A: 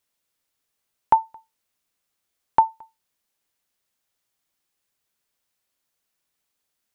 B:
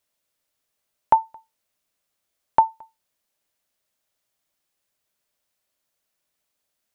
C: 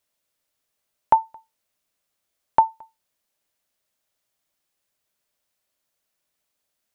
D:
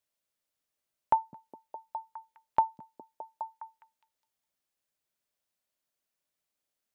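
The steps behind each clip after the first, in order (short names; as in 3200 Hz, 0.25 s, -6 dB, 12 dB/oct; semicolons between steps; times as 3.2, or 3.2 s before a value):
bell 610 Hz +7 dB 0.24 oct
nothing audible
delay with a stepping band-pass 0.206 s, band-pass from 190 Hz, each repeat 0.7 oct, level -4 dB; gain -8.5 dB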